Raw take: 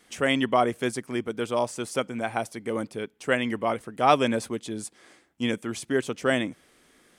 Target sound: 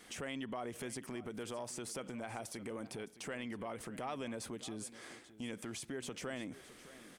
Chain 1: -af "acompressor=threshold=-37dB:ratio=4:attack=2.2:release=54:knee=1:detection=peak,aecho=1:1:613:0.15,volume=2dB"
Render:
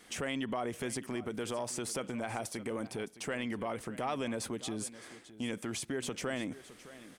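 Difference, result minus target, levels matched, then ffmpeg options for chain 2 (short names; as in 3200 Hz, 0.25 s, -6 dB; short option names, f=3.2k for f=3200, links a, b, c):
compressor: peak gain reduction -6.5 dB
-af "acompressor=threshold=-45.5dB:ratio=4:attack=2.2:release=54:knee=1:detection=peak,aecho=1:1:613:0.15,volume=2dB"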